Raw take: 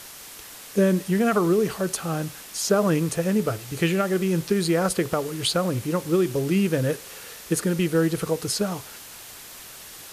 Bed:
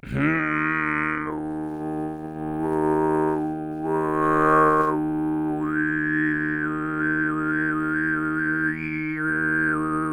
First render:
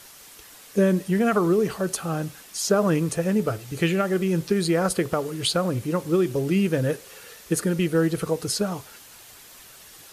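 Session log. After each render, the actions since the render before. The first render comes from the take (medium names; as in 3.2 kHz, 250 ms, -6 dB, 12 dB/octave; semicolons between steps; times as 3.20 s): noise reduction 6 dB, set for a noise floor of -42 dBFS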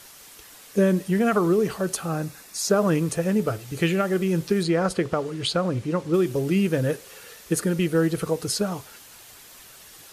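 2.07–2.70 s: band-stop 3.1 kHz, Q 5.2; 4.63–6.14 s: distance through air 60 m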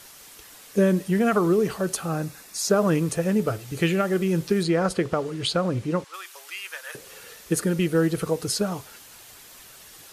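6.04–6.95 s: high-pass 1 kHz 24 dB/octave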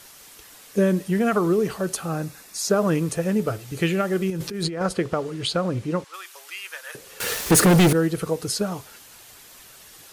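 4.30–4.81 s: compressor with a negative ratio -28 dBFS; 7.20–7.93 s: waveshaping leveller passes 5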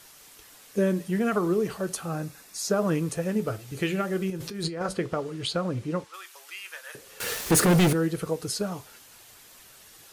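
flange 0.36 Hz, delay 6.2 ms, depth 3.4 ms, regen -76%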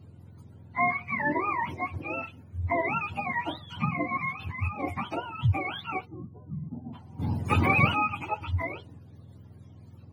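spectrum inverted on a logarithmic axis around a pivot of 640 Hz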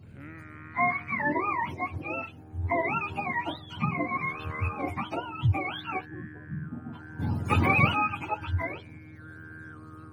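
add bed -24 dB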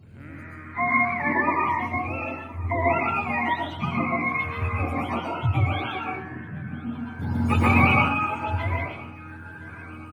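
feedback delay 1016 ms, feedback 43%, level -21.5 dB; plate-style reverb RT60 0.63 s, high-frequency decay 0.6×, pre-delay 105 ms, DRR -3 dB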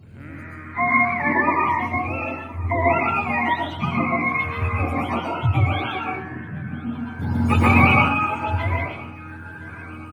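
trim +3.5 dB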